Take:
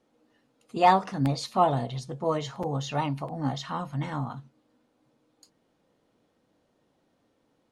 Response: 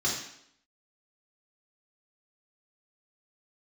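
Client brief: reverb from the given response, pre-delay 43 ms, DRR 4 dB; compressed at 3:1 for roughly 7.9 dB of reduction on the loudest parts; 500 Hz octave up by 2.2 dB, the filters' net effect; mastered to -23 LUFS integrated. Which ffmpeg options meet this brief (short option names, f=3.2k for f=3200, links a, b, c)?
-filter_complex "[0:a]equalizer=f=500:t=o:g=3,acompressor=threshold=-24dB:ratio=3,asplit=2[a][b];[1:a]atrim=start_sample=2205,adelay=43[c];[b][c]afir=irnorm=-1:irlink=0,volume=-12.5dB[d];[a][d]amix=inputs=2:normalize=0,volume=5dB"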